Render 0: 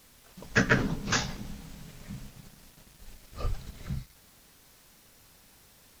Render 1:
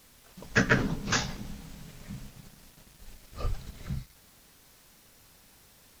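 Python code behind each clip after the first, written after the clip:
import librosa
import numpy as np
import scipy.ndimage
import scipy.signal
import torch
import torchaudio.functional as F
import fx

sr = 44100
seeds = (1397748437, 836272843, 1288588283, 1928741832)

y = x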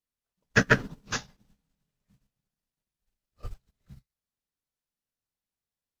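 y = fx.notch(x, sr, hz=2200.0, q=28.0)
y = fx.upward_expand(y, sr, threshold_db=-46.0, expansion=2.5)
y = F.gain(torch.from_numpy(y), 4.0).numpy()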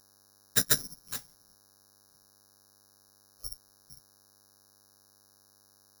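y = fx.dmg_buzz(x, sr, base_hz=100.0, harmonics=17, level_db=-59.0, tilt_db=-2, odd_only=False)
y = (np.kron(scipy.signal.resample_poly(y, 1, 8), np.eye(8)[0]) * 8)[:len(y)]
y = F.gain(torch.from_numpy(y), -13.0).numpy()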